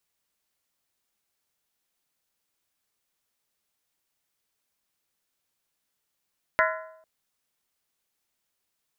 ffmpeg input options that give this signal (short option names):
-f lavfi -i "aevalsrc='0.0794*pow(10,-3*t/0.77)*sin(2*PI*639*t)+0.075*pow(10,-3*t/0.61)*sin(2*PI*1018.6*t)+0.0708*pow(10,-3*t/0.527)*sin(2*PI*1364.9*t)+0.0668*pow(10,-3*t/0.508)*sin(2*PI*1467.1*t)+0.0631*pow(10,-3*t/0.473)*sin(2*PI*1695.3*t)+0.0596*pow(10,-3*t/0.451)*sin(2*PI*1864.6*t)+0.0562*pow(10,-3*t/0.433)*sin(2*PI*2016.7*t)':d=0.45:s=44100"